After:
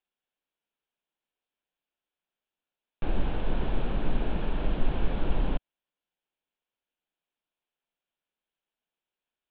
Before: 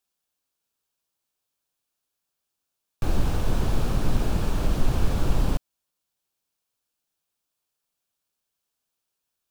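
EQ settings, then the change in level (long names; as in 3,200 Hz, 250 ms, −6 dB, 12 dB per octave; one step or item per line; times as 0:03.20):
Butterworth low-pass 3,500 Hz 48 dB per octave
parametric band 95 Hz −12.5 dB 0.94 octaves
parametric band 1,200 Hz −5.5 dB 0.29 octaves
−2.5 dB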